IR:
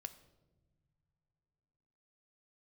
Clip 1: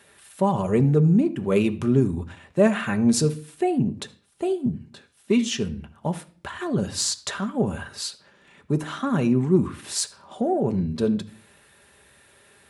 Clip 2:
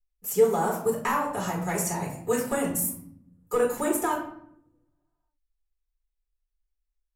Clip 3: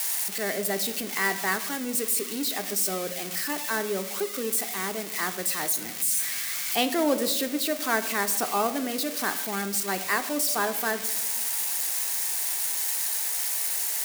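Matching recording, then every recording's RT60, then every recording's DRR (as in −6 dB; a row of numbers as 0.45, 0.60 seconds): 3; non-exponential decay, 0.70 s, non-exponential decay; 6.5, −3.5, 9.0 decibels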